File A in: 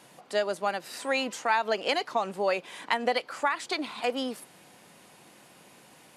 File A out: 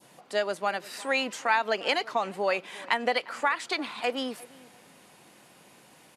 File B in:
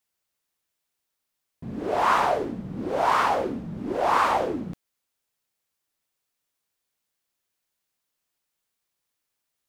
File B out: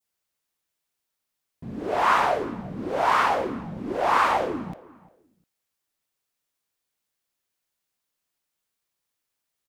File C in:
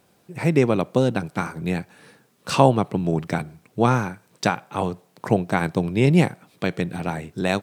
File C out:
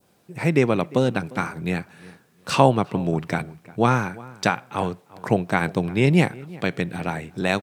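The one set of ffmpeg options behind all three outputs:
-filter_complex "[0:a]adynamicequalizer=threshold=0.0126:dfrequency=2000:dqfactor=0.82:tfrequency=2000:tqfactor=0.82:attack=5:release=100:ratio=0.375:range=2:mode=boostabove:tftype=bell,asplit=2[a][b];[b]adelay=352,lowpass=f=1.9k:p=1,volume=-20.5dB,asplit=2[c][d];[d]adelay=352,lowpass=f=1.9k:p=1,volume=0.23[e];[a][c][e]amix=inputs=3:normalize=0,volume=-1dB"

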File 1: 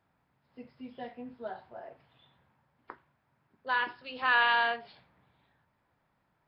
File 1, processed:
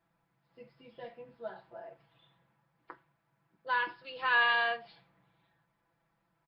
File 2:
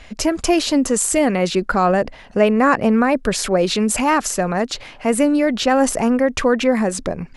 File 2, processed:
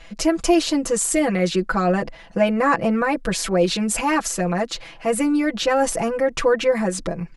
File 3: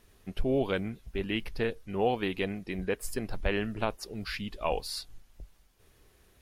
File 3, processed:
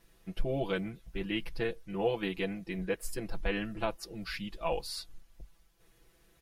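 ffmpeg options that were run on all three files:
-af "aecho=1:1:6:1,volume=-5.5dB"

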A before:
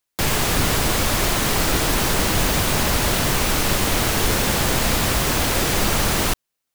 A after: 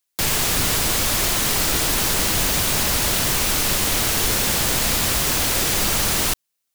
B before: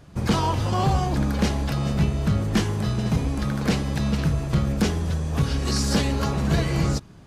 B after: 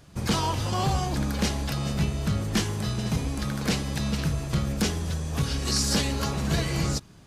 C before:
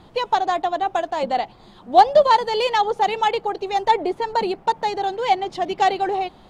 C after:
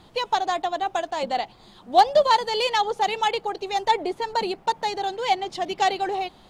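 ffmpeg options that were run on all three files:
-af "highshelf=f=2.6k:g=8.5,volume=-4.5dB"

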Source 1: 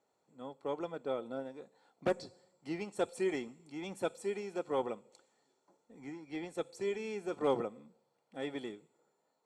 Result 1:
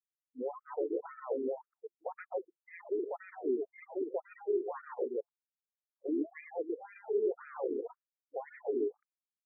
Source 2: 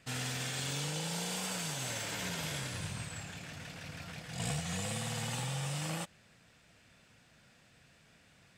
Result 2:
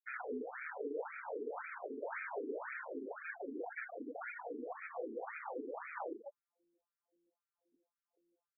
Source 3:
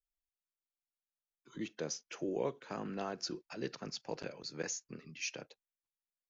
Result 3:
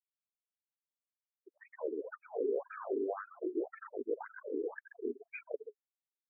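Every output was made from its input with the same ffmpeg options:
-filter_complex "[0:a]aeval=exprs='if(lt(val(0),0),0.251*val(0),val(0))':c=same,asplit=2[a][b];[b]aecho=0:1:122.4|256.6:0.794|0.251[c];[a][c]amix=inputs=2:normalize=0,afftfilt=real='re*gte(hypot(re,im),0.00631)':imag='im*gte(hypot(re,im),0.00631)':win_size=1024:overlap=0.75,equalizer=f=420:w=3.2:g=8,areverse,acompressor=mode=upward:threshold=-44dB:ratio=2.5,areverse,asoftclip=type=hard:threshold=-19dB,acompressor=threshold=-35dB:ratio=10,alimiter=level_in=12dB:limit=-24dB:level=0:latency=1:release=101,volume=-12dB,equalizer=f=3.2k:w=0.57:g=-4.5,bandreject=f=50:t=h:w=6,bandreject=f=100:t=h:w=6,bandreject=f=150:t=h:w=6,bandreject=f=200:t=h:w=6,afftfilt=real='re*between(b*sr/1024,310*pow(1800/310,0.5+0.5*sin(2*PI*1.9*pts/sr))/1.41,310*pow(1800/310,0.5+0.5*sin(2*PI*1.9*pts/sr))*1.41)':imag='im*between(b*sr/1024,310*pow(1800/310,0.5+0.5*sin(2*PI*1.9*pts/sr))/1.41,310*pow(1800/310,0.5+0.5*sin(2*PI*1.9*pts/sr))*1.41)':win_size=1024:overlap=0.75,volume=15.5dB"

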